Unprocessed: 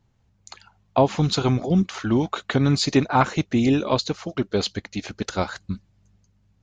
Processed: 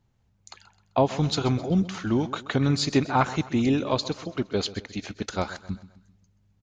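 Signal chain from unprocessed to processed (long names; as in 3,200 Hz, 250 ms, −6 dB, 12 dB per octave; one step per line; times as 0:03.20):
repeating echo 130 ms, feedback 43%, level −16 dB
level −3.5 dB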